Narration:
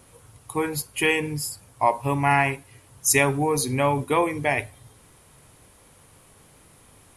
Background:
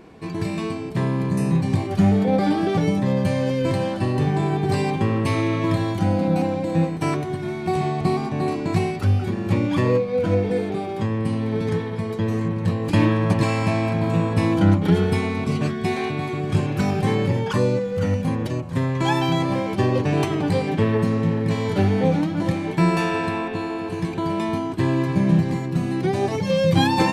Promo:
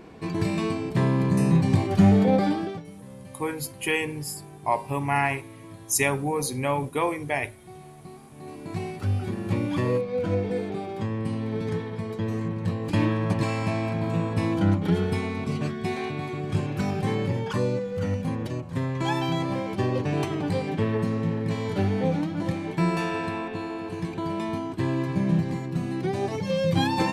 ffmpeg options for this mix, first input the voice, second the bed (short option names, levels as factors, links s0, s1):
-filter_complex "[0:a]adelay=2850,volume=0.631[s0];[1:a]volume=7.5,afade=t=out:st=2.26:d=0.57:silence=0.0707946,afade=t=in:st=8.34:d=0.91:silence=0.133352[s1];[s0][s1]amix=inputs=2:normalize=0"